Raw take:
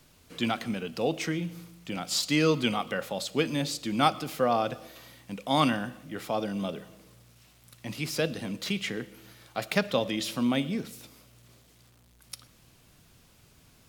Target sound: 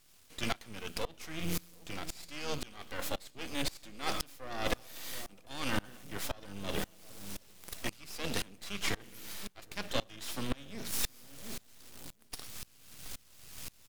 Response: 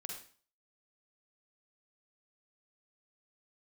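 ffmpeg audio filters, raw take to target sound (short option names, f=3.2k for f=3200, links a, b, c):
-filter_complex "[0:a]highshelf=f=2.3k:g=12,bandreject=f=60:t=h:w=6,bandreject=f=120:t=h:w=6,bandreject=f=180:t=h:w=6,bandreject=f=240:t=h:w=6,areverse,acompressor=threshold=-37dB:ratio=10,areverse,aeval=exprs='max(val(0),0)':c=same,asplit=2[a][b];[b]asetrate=22050,aresample=44100,atempo=2,volume=-10dB[c];[a][c]amix=inputs=2:normalize=0,asplit=2[d][e];[e]adelay=723,lowpass=f=820:p=1,volume=-14dB,asplit=2[f][g];[g]adelay=723,lowpass=f=820:p=1,volume=0.4,asplit=2[h][i];[i]adelay=723,lowpass=f=820:p=1,volume=0.4,asplit=2[j][k];[k]adelay=723,lowpass=f=820:p=1,volume=0.4[l];[f][h][j][l]amix=inputs=4:normalize=0[m];[d][m]amix=inputs=2:normalize=0,aeval=exprs='val(0)*pow(10,-26*if(lt(mod(-1.9*n/s,1),2*abs(-1.9)/1000),1-mod(-1.9*n/s,1)/(2*abs(-1.9)/1000),(mod(-1.9*n/s,1)-2*abs(-1.9)/1000)/(1-2*abs(-1.9)/1000))/20)':c=same,volume=13.5dB"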